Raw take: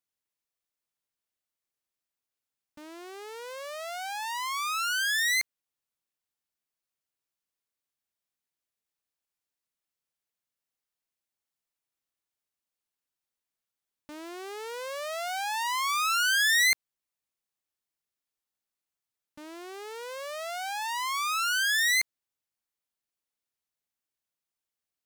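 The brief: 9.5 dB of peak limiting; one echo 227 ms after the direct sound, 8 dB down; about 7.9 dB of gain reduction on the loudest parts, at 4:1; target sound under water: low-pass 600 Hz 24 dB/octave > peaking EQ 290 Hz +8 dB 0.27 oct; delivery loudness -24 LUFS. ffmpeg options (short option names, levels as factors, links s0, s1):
-af "acompressor=threshold=0.0282:ratio=4,alimiter=level_in=3.76:limit=0.0631:level=0:latency=1,volume=0.266,lowpass=f=600:w=0.5412,lowpass=f=600:w=1.3066,equalizer=f=290:t=o:w=0.27:g=8,aecho=1:1:227:0.398,volume=11.2"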